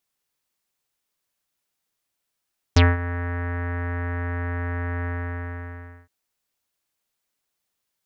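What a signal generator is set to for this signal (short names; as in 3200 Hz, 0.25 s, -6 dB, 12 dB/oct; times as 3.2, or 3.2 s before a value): synth note square F2 24 dB/oct, low-pass 1800 Hz, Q 4.6, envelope 2 oct, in 0.07 s, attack 7.3 ms, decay 0.20 s, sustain -15.5 dB, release 1.03 s, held 2.29 s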